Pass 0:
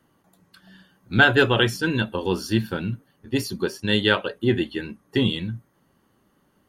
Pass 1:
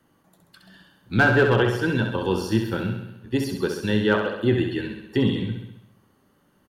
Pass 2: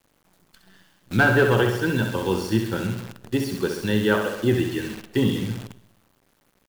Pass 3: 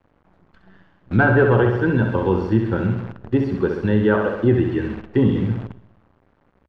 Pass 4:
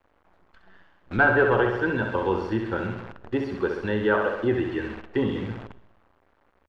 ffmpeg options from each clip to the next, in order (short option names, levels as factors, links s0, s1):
-filter_complex "[0:a]acrossover=split=510|1700[s0][s1][s2];[s2]acompressor=threshold=0.0158:ratio=5[s3];[s0][s1][s3]amix=inputs=3:normalize=0,aeval=exprs='clip(val(0),-1,0.266)':c=same,aecho=1:1:66|132|198|264|330|396|462|528:0.501|0.301|0.18|0.108|0.065|0.039|0.0234|0.014"
-af "acrusher=bits=7:dc=4:mix=0:aa=0.000001"
-filter_complex "[0:a]lowpass=1500,equalizer=f=74:w=2.4:g=8,asplit=2[s0][s1];[s1]alimiter=limit=0.178:level=0:latency=1:release=112,volume=0.891[s2];[s0][s2]amix=inputs=2:normalize=0"
-af "equalizer=f=140:w=0.54:g=-13.5"